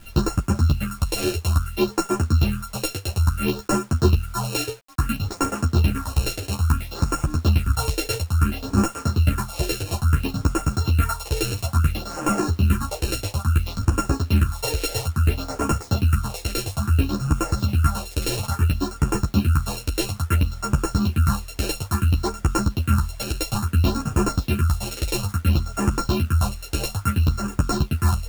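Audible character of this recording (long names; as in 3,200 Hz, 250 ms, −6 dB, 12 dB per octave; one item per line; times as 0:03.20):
a buzz of ramps at a fixed pitch in blocks of 32 samples
phaser sweep stages 4, 0.59 Hz, lowest notch 180–3,800 Hz
a quantiser's noise floor 8 bits, dither none
a shimmering, thickened sound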